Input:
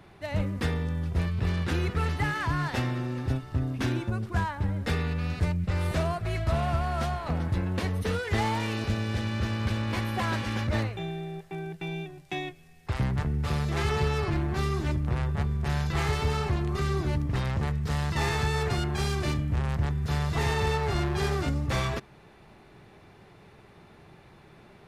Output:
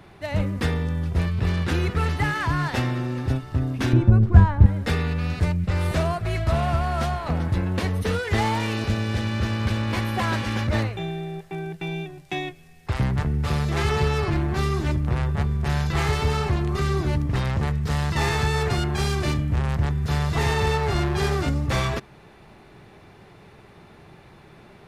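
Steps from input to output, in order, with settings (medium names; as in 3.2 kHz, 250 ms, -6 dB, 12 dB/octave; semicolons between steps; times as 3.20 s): 3.93–4.66 s: tilt EQ -3.5 dB/octave; trim +4.5 dB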